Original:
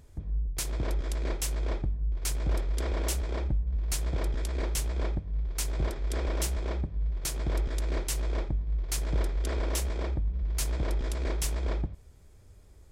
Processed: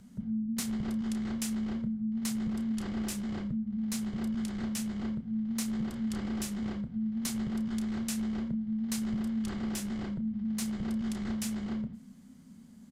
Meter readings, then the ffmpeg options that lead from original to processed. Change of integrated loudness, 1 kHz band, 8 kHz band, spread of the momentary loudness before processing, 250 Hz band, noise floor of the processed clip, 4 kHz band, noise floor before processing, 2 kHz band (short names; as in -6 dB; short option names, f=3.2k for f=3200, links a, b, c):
-2.0 dB, -6.0 dB, -4.5 dB, 2 LU, +12.0 dB, -52 dBFS, -4.0 dB, -53 dBFS, -4.5 dB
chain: -filter_complex "[0:a]acompressor=threshold=-31dB:ratio=6,afreqshift=-270,asplit=2[a][b];[b]adelay=31,volume=-10dB[c];[a][c]amix=inputs=2:normalize=0"